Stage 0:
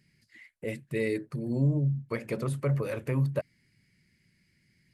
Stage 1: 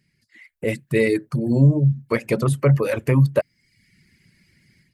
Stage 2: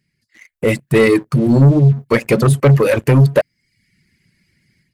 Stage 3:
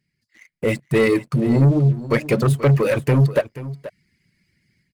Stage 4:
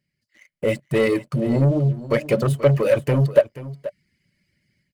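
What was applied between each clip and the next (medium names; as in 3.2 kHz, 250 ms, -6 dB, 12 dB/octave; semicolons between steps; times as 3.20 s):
reverb removal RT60 0.7 s; level rider gain up to 12 dB
waveshaping leveller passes 2; trim +2 dB
median filter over 3 samples; delay 482 ms -15.5 dB; trim -5 dB
small resonant body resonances 580/3000 Hz, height 11 dB; trim -3.5 dB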